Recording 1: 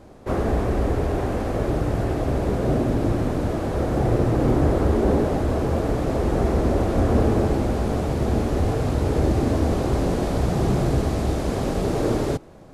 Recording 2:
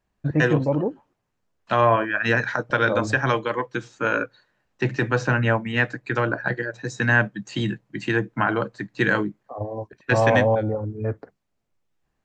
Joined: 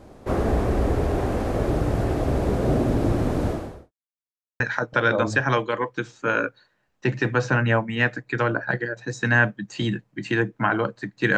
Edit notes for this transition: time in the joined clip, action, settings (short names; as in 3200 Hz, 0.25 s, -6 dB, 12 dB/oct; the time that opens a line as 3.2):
recording 1
3.48–3.92 fade out quadratic
3.92–4.6 mute
4.6 switch to recording 2 from 2.37 s